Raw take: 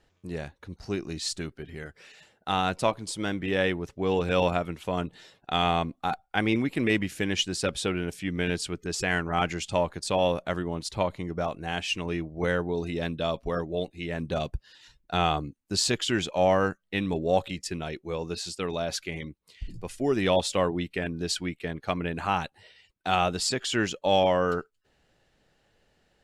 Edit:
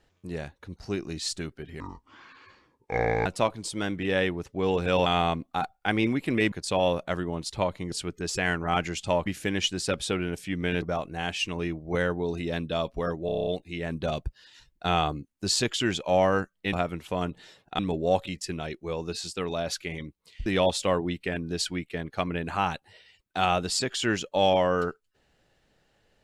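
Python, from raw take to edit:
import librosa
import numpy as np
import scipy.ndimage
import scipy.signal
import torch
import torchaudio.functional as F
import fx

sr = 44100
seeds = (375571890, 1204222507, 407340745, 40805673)

y = fx.edit(x, sr, fx.speed_span(start_s=1.8, length_s=0.89, speed=0.61),
    fx.move(start_s=4.49, length_s=1.06, to_s=17.01),
    fx.swap(start_s=7.01, length_s=1.56, other_s=9.91, other_length_s=1.4),
    fx.stutter(start_s=13.75, slice_s=0.03, count=8),
    fx.cut(start_s=19.68, length_s=0.48), tone=tone)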